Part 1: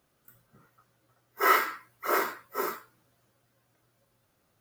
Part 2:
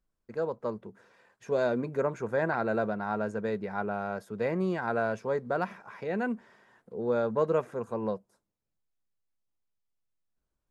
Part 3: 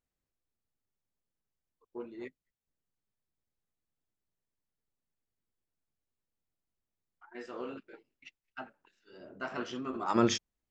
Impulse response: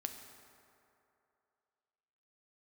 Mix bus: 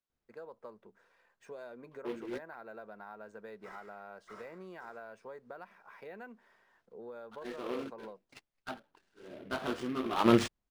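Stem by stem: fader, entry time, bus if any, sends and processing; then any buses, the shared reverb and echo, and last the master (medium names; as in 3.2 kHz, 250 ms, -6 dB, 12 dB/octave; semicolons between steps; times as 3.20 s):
-13.0 dB, 2.25 s, bus A, no send, compression 3:1, threshold -36 dBFS, peak gain reduction 14 dB
-6.0 dB, 0.00 s, bus A, no send, none
+3.0 dB, 0.10 s, no bus, no send, treble shelf 2.4 kHz -7 dB; delay time shaken by noise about 2 kHz, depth 0.059 ms
bus A: 0.0 dB, high-pass 610 Hz 6 dB/octave; compression 6:1, threshold -44 dBFS, peak gain reduction 12.5 dB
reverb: none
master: decimation joined by straight lines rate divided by 3×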